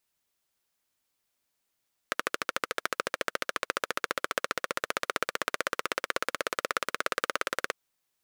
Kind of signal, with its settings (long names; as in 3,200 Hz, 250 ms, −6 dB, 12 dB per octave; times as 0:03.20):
pulse-train model of a single-cylinder engine, changing speed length 5.60 s, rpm 1,600, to 2,100, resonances 530/1,300 Hz